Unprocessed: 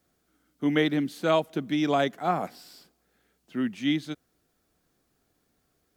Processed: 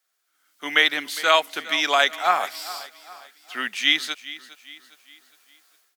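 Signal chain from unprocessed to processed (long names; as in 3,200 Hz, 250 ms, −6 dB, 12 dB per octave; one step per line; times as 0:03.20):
high-pass filter 1,300 Hz 12 dB per octave
automatic gain control gain up to 16 dB
repeating echo 408 ms, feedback 44%, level −17 dB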